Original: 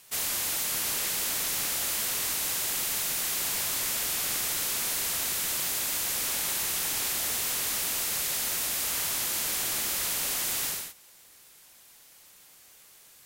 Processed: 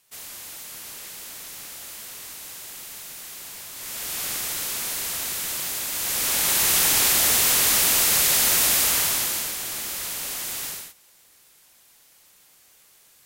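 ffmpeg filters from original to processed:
-af "volume=10.5dB,afade=t=in:st=3.74:d=0.49:silence=0.316228,afade=t=in:st=5.92:d=0.84:silence=0.334965,afade=t=out:st=8.72:d=0.83:silence=0.266073"

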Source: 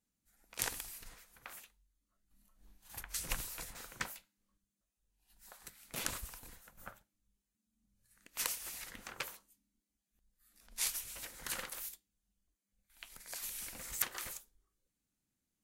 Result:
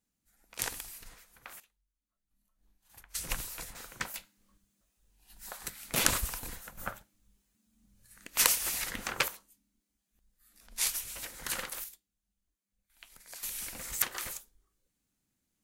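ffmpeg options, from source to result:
-af "asetnsamples=n=441:p=0,asendcmd='1.6 volume volume -8dB;3.15 volume volume 3dB;4.14 volume volume 12dB;9.28 volume volume 5dB;11.84 volume volume -2dB;13.43 volume volume 5dB',volume=2dB"

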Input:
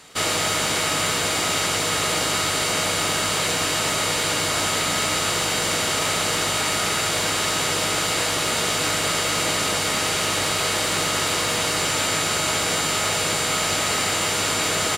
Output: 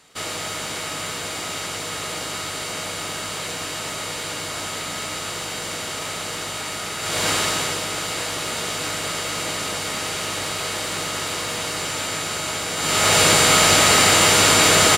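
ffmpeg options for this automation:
-af "volume=14.5dB,afade=t=in:st=6.99:d=0.31:silence=0.354813,afade=t=out:st=7.3:d=0.53:silence=0.473151,afade=t=in:st=12.76:d=0.44:silence=0.251189"

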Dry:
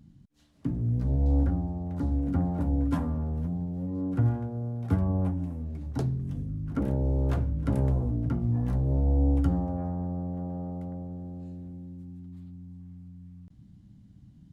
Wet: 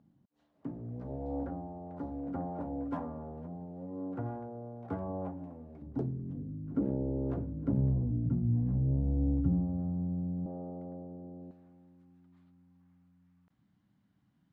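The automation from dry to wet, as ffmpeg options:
-af "asetnsamples=n=441:p=0,asendcmd='5.82 bandpass f 320;7.72 bandpass f 170;10.46 bandpass f 450;11.51 bandpass f 1300',bandpass=f=670:t=q:w=1.1:csg=0"

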